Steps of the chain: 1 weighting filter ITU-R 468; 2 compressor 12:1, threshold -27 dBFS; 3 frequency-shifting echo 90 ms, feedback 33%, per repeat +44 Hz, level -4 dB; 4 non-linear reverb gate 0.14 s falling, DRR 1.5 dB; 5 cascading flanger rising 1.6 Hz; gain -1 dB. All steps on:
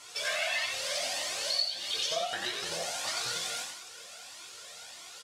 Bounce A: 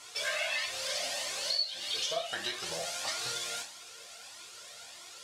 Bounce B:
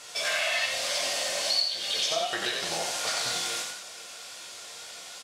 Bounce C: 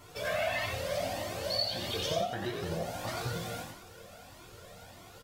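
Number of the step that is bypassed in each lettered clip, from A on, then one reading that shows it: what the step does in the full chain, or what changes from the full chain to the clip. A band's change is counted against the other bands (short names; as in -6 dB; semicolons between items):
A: 3, loudness change -1.5 LU; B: 5, loudness change +4.0 LU; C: 1, 125 Hz band +19.0 dB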